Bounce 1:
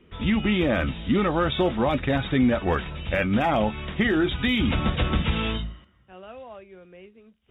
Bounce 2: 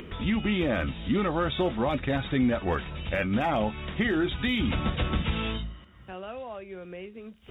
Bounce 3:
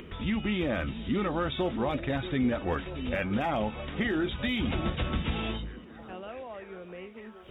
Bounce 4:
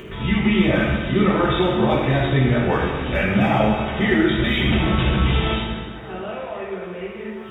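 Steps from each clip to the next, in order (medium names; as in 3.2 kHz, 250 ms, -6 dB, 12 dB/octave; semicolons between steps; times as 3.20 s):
upward compressor, threshold -25 dBFS; trim -4 dB
repeats whose band climbs or falls 633 ms, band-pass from 310 Hz, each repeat 0.7 oct, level -9 dB; trim -3 dB
reverberation RT60 1.6 s, pre-delay 4 ms, DRR -6.5 dB; trim +4.5 dB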